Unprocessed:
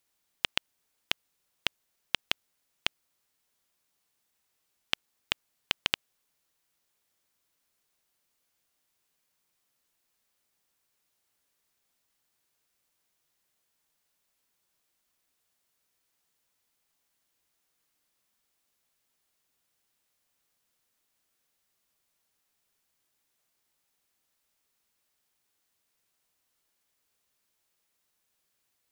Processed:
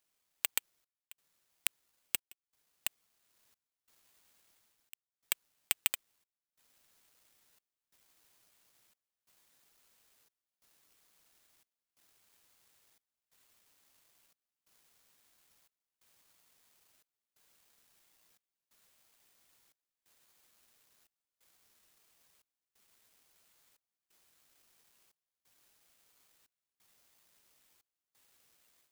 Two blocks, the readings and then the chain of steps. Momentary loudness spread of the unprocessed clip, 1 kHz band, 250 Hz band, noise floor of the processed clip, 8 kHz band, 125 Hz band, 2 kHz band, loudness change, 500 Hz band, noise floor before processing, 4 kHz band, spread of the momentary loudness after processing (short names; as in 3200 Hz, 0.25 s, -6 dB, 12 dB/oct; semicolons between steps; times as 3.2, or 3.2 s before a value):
3 LU, -11.5 dB, -14.0 dB, under -85 dBFS, +8.0 dB, under -15 dB, -9.0 dB, -2.5 dB, -11.5 dB, -78 dBFS, -11.0 dB, 8 LU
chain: HPF 350 Hz 12 dB/oct; AGC gain up to 11.5 dB; soft clip -4 dBFS, distortion -16 dB; phaser 0.62 Hz, delay 3.1 ms, feedback 48%; careless resampling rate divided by 8×, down none, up zero stuff; step gate "xxxxx..x" 89 bpm -24 dB; gain -14 dB